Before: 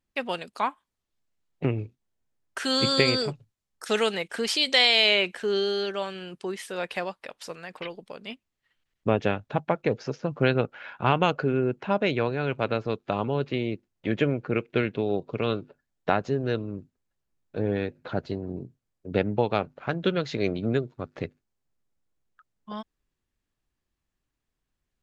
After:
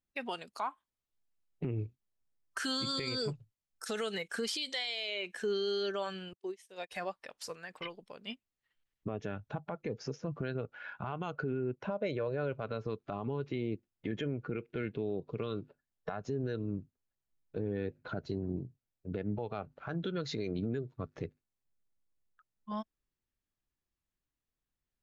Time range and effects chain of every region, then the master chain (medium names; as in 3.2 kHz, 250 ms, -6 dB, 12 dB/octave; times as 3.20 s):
6.33–6.92 s: high-pass 320 Hz 6 dB/octave + peaking EQ 1.4 kHz -9 dB 0.57 oct + upward expansion 2.5:1, over -49 dBFS
11.75–12.59 s: gate -53 dBFS, range -10 dB + peaking EQ 550 Hz +9 dB 0.37 oct
whole clip: compression 12:1, threshold -25 dBFS; spectral noise reduction 8 dB; peak limiter -25 dBFS; trim -1 dB